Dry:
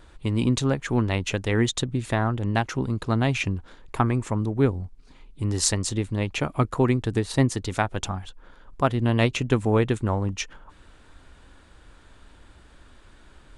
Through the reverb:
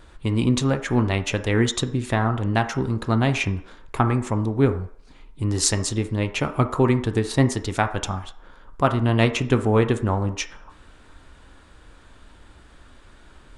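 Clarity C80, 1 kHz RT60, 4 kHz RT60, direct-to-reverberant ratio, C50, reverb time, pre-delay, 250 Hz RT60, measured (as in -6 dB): 15.5 dB, 0.60 s, 0.60 s, 7.0 dB, 12.0 dB, 0.55 s, 12 ms, 0.45 s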